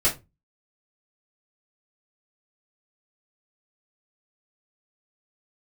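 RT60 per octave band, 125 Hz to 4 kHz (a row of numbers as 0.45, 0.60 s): 0.45, 0.30, 0.25, 0.20, 0.20, 0.15 s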